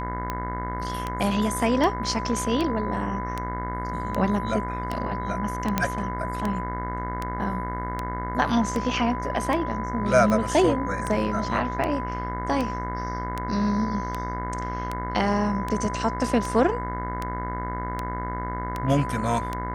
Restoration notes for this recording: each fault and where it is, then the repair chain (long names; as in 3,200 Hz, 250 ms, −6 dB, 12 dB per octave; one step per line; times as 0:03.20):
mains buzz 60 Hz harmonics 36 −32 dBFS
scratch tick 78 rpm −14 dBFS
whistle 1,000 Hz −31 dBFS
0:05.78: click −7 dBFS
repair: click removal
hum removal 60 Hz, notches 36
notch filter 1,000 Hz, Q 30